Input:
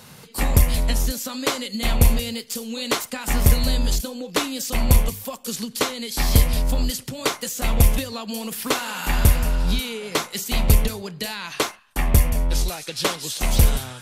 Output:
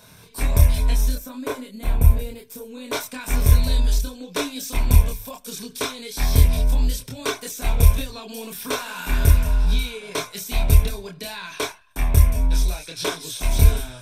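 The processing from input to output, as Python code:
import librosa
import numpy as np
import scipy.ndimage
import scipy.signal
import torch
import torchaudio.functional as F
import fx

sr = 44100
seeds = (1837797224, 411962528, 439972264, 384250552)

y = fx.peak_eq(x, sr, hz=4500.0, db=-13.0, octaves=2.2, at=(1.15, 2.93))
y = fx.chorus_voices(y, sr, voices=6, hz=0.28, base_ms=26, depth_ms=1.9, mix_pct=45)
y = fx.ripple_eq(y, sr, per_octave=1.6, db=8)
y = F.gain(torch.from_numpy(y), -1.0).numpy()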